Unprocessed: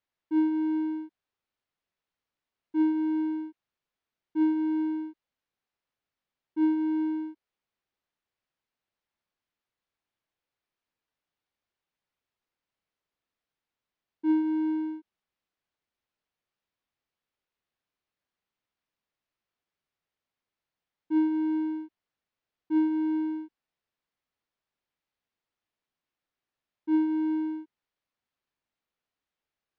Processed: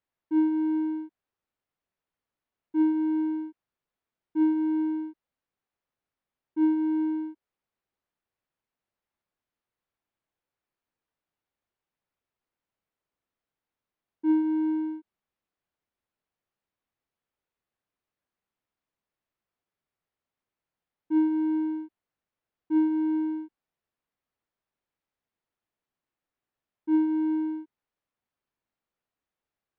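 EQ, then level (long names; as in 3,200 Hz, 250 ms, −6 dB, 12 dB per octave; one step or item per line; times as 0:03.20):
high-shelf EQ 2,600 Hz −9.5 dB
+1.5 dB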